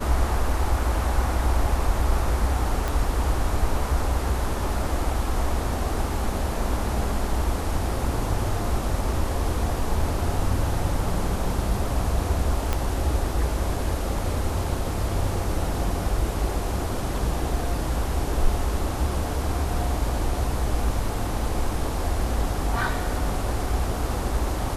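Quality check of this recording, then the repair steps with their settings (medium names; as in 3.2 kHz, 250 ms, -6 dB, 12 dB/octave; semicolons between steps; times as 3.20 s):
2.88 s: pop
12.73 s: pop -9 dBFS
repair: de-click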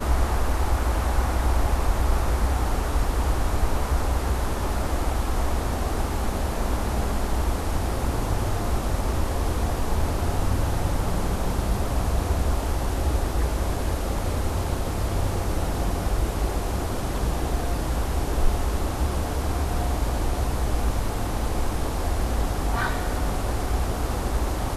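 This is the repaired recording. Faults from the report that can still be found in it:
12.73 s: pop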